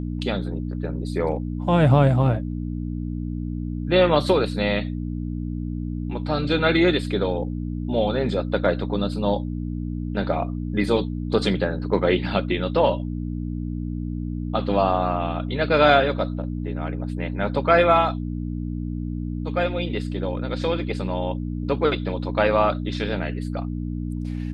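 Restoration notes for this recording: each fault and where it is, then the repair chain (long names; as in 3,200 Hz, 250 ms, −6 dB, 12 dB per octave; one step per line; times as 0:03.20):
mains hum 60 Hz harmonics 5 −28 dBFS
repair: hum removal 60 Hz, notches 5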